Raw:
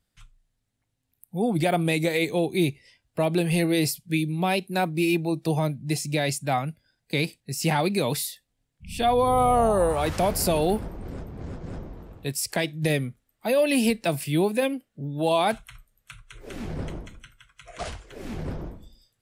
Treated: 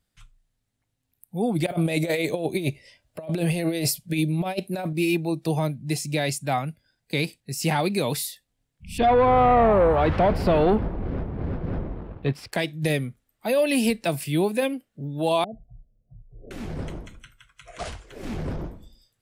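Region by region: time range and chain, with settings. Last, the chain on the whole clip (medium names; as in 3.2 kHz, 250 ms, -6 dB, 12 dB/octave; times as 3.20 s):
1.66–4.93 s: peaking EQ 600 Hz +12 dB 0.28 oct + compressor with a negative ratio -24 dBFS, ratio -0.5
8.98–12.53 s: waveshaping leveller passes 2 + distance through air 370 m
15.44–16.51 s: bass shelf 310 Hz +8 dB + compression 2:1, threshold -40 dBFS + rippled Chebyshev low-pass 730 Hz, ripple 3 dB
18.23–18.67 s: treble shelf 12 kHz -5.5 dB + waveshaping leveller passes 1
whole clip: none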